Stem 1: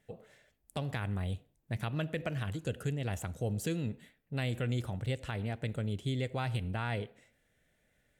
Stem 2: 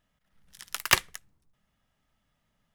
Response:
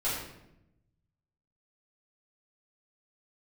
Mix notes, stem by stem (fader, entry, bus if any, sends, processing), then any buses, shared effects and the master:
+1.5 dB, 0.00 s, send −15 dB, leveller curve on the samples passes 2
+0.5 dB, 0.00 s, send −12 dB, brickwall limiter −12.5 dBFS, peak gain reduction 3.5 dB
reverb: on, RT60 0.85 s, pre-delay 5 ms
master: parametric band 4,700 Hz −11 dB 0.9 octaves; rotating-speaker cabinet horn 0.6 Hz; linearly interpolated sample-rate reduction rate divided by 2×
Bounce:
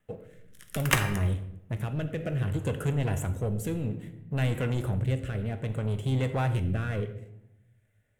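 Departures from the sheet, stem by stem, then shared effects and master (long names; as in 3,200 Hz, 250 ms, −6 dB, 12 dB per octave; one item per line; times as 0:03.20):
stem 2: missing brickwall limiter −12.5 dBFS, peak gain reduction 3.5 dB
master: missing linearly interpolated sample-rate reduction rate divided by 2×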